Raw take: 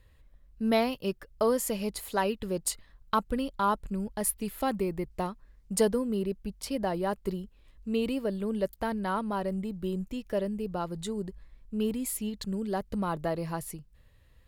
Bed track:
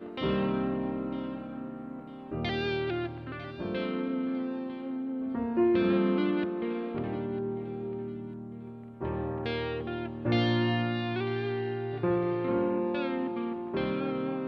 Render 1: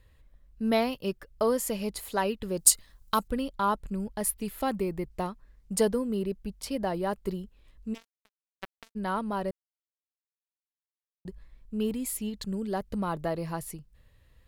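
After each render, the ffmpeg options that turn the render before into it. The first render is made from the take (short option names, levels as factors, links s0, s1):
-filter_complex "[0:a]asettb=1/sr,asplit=3[s0][s1][s2];[s0]atrim=end=2.574[s3];[s1]atrim=start=2.57:end=3.28,asetpts=PTS-STARTPTS,afade=t=in:d=0.004:c=qsin,afade=t=out:st=0.706:d=0.004:c=qsin,bass=f=250:g=0,treble=f=4000:g=13[s4];[s2]atrim=start=3.276[s5];[s3][s4]acrossfade=d=0.004:c1=hsin:c2=qsin[s6];[s6][s5]acrossfade=d=0.004:c1=qsin:c2=hsin,asplit=3[s7][s8][s9];[s7]afade=t=out:st=7.93:d=0.02[s10];[s8]acrusher=bits=2:mix=0:aa=0.5,afade=t=in:st=7.93:d=0.02,afade=t=out:st=8.95:d=0.02[s11];[s9]afade=t=in:st=8.95:d=0.02[s12];[s10][s11][s12]amix=inputs=3:normalize=0,asplit=3[s13][s14][s15];[s13]atrim=end=9.51,asetpts=PTS-STARTPTS,afade=t=out:st=9.506:d=0.004:c=hsin[s16];[s14]atrim=start=9.51:end=11.25,asetpts=PTS-STARTPTS,volume=0[s17];[s15]atrim=start=11.25,asetpts=PTS-STARTPTS,afade=t=in:d=0.004:c=hsin[s18];[s16][s17][s18]concat=n=3:v=0:a=1"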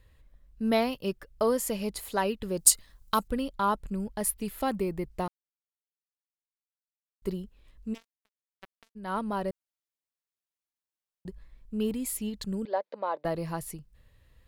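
-filter_complex "[0:a]asettb=1/sr,asplit=3[s0][s1][s2];[s0]atrim=end=12.654[s3];[s1]atrim=start=12.65:end=13.25,asetpts=PTS-STARTPTS,afade=t=in:d=0.004:c=qsin,afade=t=out:st=0.596:d=0.004:c=qsin,highpass=f=390:w=0.5412,highpass=f=390:w=1.3066,equalizer=f=400:t=q:w=4:g=-5,equalizer=f=560:t=q:w=4:g=8,equalizer=f=950:t=q:w=4:g=4,equalizer=f=1300:t=q:w=4:g=-5,equalizer=f=2900:t=q:w=4:g=-6,lowpass=f=4000:w=0.5412,lowpass=f=4000:w=1.3066[s4];[s2]atrim=start=13.246[s5];[s3][s4]acrossfade=d=0.004:c1=hsin:c2=qsin[s6];[s6][s5]acrossfade=d=0.004:c1=qsin:c2=hsin,asplit=5[s7][s8][s9][s10][s11];[s7]atrim=end=5.28,asetpts=PTS-STARTPTS,afade=t=out:st=5.276:d=0.004:c=hsin[s12];[s8]atrim=start=5.28:end=7.22,asetpts=PTS-STARTPTS,volume=0[s13];[s9]atrim=start=7.22:end=8.08,asetpts=PTS-STARTPTS,afade=t=in:d=0.004:c=hsin,afade=t=out:st=0.71:d=0.15:silence=0.334965[s14];[s10]atrim=start=8.08:end=9.02,asetpts=PTS-STARTPTS,volume=0.335[s15];[s11]atrim=start=9.02,asetpts=PTS-STARTPTS,afade=t=in:d=0.15:silence=0.334965[s16];[s12][s13][s14][s15][s16]concat=n=5:v=0:a=1"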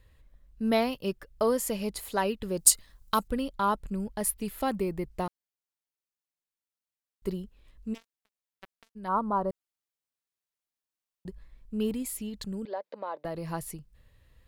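-filter_complex "[0:a]asplit=3[s0][s1][s2];[s0]afade=t=out:st=9.07:d=0.02[s3];[s1]highshelf=f=1600:t=q:w=3:g=-12,afade=t=in:st=9.07:d=0.02,afade=t=out:st=9.49:d=0.02[s4];[s2]afade=t=in:st=9.49:d=0.02[s5];[s3][s4][s5]amix=inputs=3:normalize=0,asettb=1/sr,asplit=3[s6][s7][s8];[s6]atrim=end=12.024[s9];[s7]atrim=start=12.02:end=13.49,asetpts=PTS-STARTPTS,afade=t=in:d=0.004:c=qsin,afade=t=out:st=1.466:d=0.004:c=qsin,acompressor=threshold=0.02:ratio=2:attack=3.2:release=140:knee=1:detection=peak[s10];[s8]atrim=start=13.486[s11];[s9][s10]acrossfade=d=0.004:c1=hsin:c2=qsin[s12];[s12][s11]acrossfade=d=0.004:c1=qsin:c2=hsin"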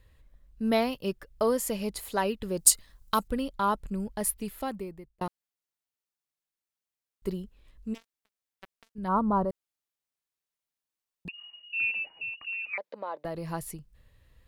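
-filter_complex "[0:a]asettb=1/sr,asplit=3[s0][s1][s2];[s0]atrim=end=8.984[s3];[s1]atrim=start=8.98:end=9.45,asetpts=PTS-STARTPTS,afade=t=in:d=0.004:c=qsin,afade=t=out:st=0.466:d=0.004:c=qsin,equalizer=f=71:w=0.36:g=12.5[s4];[s2]atrim=start=9.446[s5];[s3][s4]acrossfade=d=0.004:c1=hsin:c2=qsin[s6];[s6][s5]acrossfade=d=0.004:c1=qsin:c2=hsin,asettb=1/sr,asplit=3[s7][s8][s9];[s7]atrim=end=11.284[s10];[s8]atrim=start=11.28:end=12.78,asetpts=PTS-STARTPTS,afade=t=in:d=0.004:c=qsin,afade=t=out:st=1.496:d=0.004:c=qsin,lowpass=f=2500:t=q:w=0.5098,lowpass=f=2500:t=q:w=0.6013,lowpass=f=2500:t=q:w=0.9,lowpass=f=2500:t=q:w=2.563,afreqshift=-2900[s11];[s9]atrim=start=12.776[s12];[s10][s11]acrossfade=d=0.004:c1=hsin:c2=qsin[s13];[s13][s12]acrossfade=d=0.004:c1=qsin:c2=hsin,asplit=2[s14][s15];[s14]atrim=end=5.21,asetpts=PTS-STARTPTS,afade=t=out:st=4.3:d=0.91[s16];[s15]atrim=start=5.21,asetpts=PTS-STARTPTS,afade=t=in:d=0.004:c=hsin[s17];[s16][s17]concat=n=2:v=0:a=1"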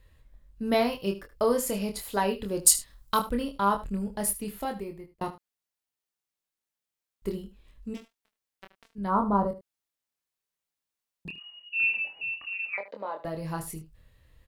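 -filter_complex "[0:a]asplit=2[s0][s1];[s1]adelay=25,volume=0.562[s2];[s0][s2]amix=inputs=2:normalize=0,aecho=1:1:76:0.178"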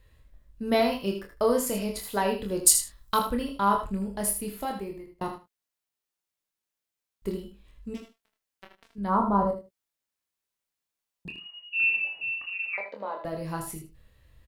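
-filter_complex "[0:a]asplit=2[s0][s1];[s1]adelay=16,volume=0.2[s2];[s0][s2]amix=inputs=2:normalize=0,aecho=1:1:39|79:0.251|0.355"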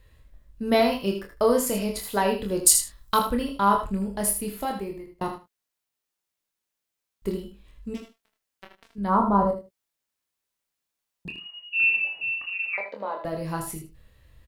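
-af "volume=1.41,alimiter=limit=0.794:level=0:latency=1"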